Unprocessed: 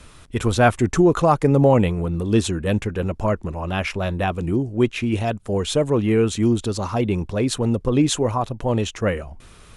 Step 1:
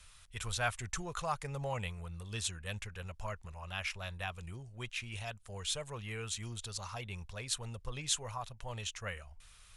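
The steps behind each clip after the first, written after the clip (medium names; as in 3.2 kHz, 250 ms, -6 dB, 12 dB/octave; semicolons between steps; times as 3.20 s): amplifier tone stack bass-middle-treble 10-0-10; trim -7 dB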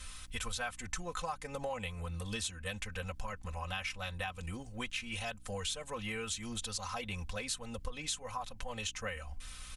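comb 3.9 ms, depth 86%; compression 6:1, threshold -44 dBFS, peak gain reduction 17 dB; hum 60 Hz, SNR 21 dB; trim +8 dB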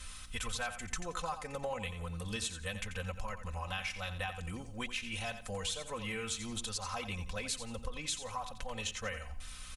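feedback delay 88 ms, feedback 28%, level -10.5 dB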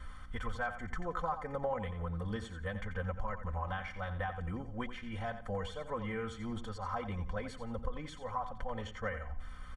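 Savitzky-Golay filter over 41 samples; trim +3 dB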